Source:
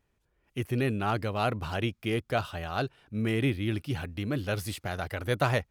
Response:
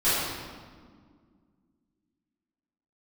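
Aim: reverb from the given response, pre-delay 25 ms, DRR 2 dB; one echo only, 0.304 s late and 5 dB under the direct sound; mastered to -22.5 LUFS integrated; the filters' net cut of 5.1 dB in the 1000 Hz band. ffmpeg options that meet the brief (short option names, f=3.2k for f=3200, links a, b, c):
-filter_complex "[0:a]equalizer=f=1k:t=o:g=-8,aecho=1:1:304:0.562,asplit=2[a][b];[1:a]atrim=start_sample=2205,adelay=25[c];[b][c]afir=irnorm=-1:irlink=0,volume=-17.5dB[d];[a][d]amix=inputs=2:normalize=0,volume=6dB"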